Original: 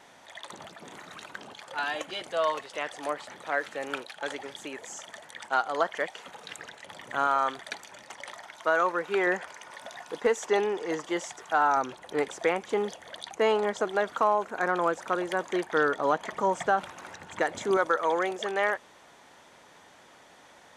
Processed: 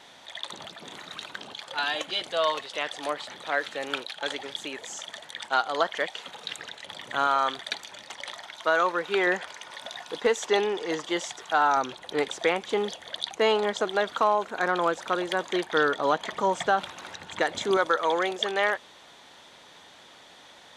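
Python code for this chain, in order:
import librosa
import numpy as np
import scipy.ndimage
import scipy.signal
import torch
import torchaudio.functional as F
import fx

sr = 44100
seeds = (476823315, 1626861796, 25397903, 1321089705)

y = fx.peak_eq(x, sr, hz=3700.0, db=10.0, octaves=0.8)
y = F.gain(torch.from_numpy(y), 1.0).numpy()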